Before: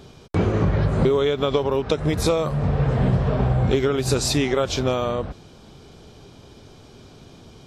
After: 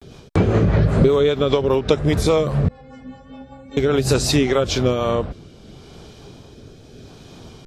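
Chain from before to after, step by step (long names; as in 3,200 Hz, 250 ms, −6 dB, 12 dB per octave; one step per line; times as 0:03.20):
0:02.67–0:03.77: stiff-string resonator 260 Hz, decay 0.62 s, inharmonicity 0.008
rotating-speaker cabinet horn 5 Hz, later 0.75 Hz, at 0:04.49
pitch vibrato 0.33 Hz 53 cents
level +5.5 dB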